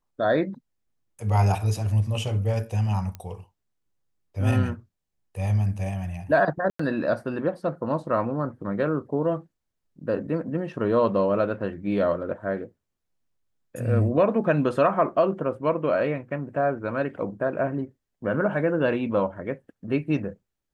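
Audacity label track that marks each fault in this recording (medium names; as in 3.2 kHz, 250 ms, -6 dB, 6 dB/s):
3.150000	3.150000	pop -22 dBFS
6.700000	6.790000	dropout 94 ms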